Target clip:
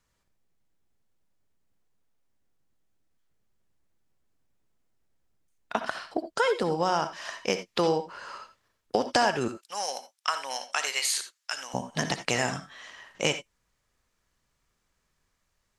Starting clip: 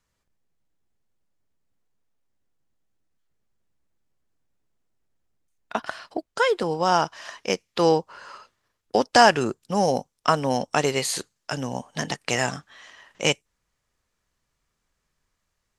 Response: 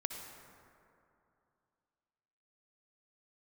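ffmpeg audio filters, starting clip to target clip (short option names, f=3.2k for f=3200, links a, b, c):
-filter_complex "[0:a]asettb=1/sr,asplit=3[a][b][c];[a]atrim=end=9.484[d];[b]atrim=start=9.48:end=11.74,asetpts=PTS-STARTPTS,afade=t=in:d=0.004:c=qsin,afade=t=out:st=2.256:d=0.004:c=qsin,highpass=1.4k[e];[c]atrim=start=11.736[f];[d][e]acrossfade=d=0.004:c1=hsin:c2=qsin[g];[g][f]acrossfade=d=0.004:c1=qsin:c2=hsin,acompressor=threshold=-24dB:ratio=3[h];[1:a]atrim=start_sample=2205,afade=t=out:st=0.14:d=0.01,atrim=end_sample=6615[i];[h][i]afir=irnorm=-1:irlink=0,volume=2dB"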